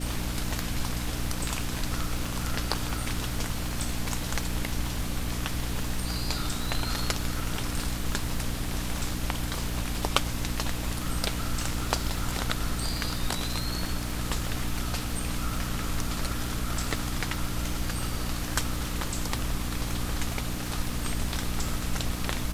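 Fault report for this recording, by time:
crackle 120 per s -33 dBFS
hum 60 Hz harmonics 5 -34 dBFS

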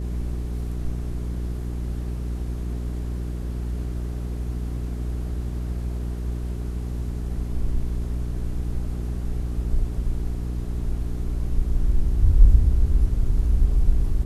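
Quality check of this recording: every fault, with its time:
hum 60 Hz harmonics 7 -28 dBFS

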